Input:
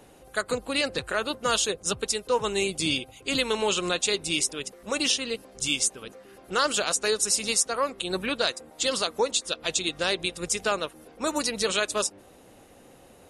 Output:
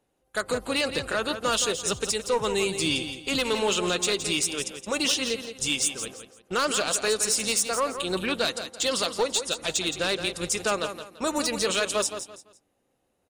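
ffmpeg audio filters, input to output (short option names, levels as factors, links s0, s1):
-filter_complex "[0:a]aeval=exprs='0.398*(cos(1*acos(clip(val(0)/0.398,-1,1)))-cos(1*PI/2))+0.0891*(cos(5*acos(clip(val(0)/0.398,-1,1)))-cos(5*PI/2))':c=same,agate=range=0.0631:threshold=0.0126:ratio=16:detection=peak,asplit=2[s0][s1];[s1]alimiter=limit=0.15:level=0:latency=1,volume=0.708[s2];[s0][s2]amix=inputs=2:normalize=0,aecho=1:1:169|338|507:0.335|0.0971|0.0282,volume=0.376"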